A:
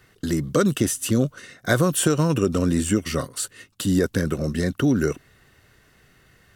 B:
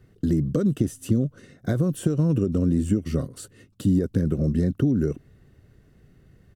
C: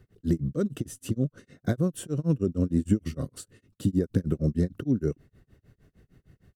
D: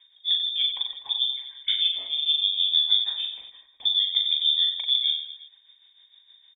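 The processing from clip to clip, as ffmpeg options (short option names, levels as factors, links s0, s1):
-af "acompressor=threshold=0.0891:ratio=6,firequalizer=gain_entry='entry(170,0);entry(940,-16);entry(2100,-18)':delay=0.05:min_phase=1,volume=1.88"
-af "tremolo=f=6.5:d=0.99"
-af "aecho=1:1:40|92|159.6|247.5|361.7:0.631|0.398|0.251|0.158|0.1,lowpass=f=3100:t=q:w=0.5098,lowpass=f=3100:t=q:w=0.6013,lowpass=f=3100:t=q:w=0.9,lowpass=f=3100:t=q:w=2.563,afreqshift=-3700"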